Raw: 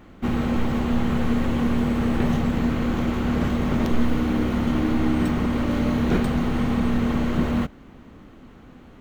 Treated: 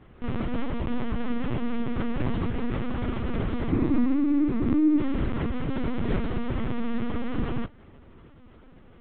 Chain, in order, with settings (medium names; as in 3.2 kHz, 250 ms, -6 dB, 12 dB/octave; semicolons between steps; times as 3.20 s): 3.69–4.99 s: graphic EQ with 31 bands 100 Hz -5 dB, 160 Hz +8 dB, 315 Hz +10 dB, 630 Hz -4 dB, 1.6 kHz -5 dB, 3.15 kHz -10 dB; LPC vocoder at 8 kHz pitch kept; trim -4.5 dB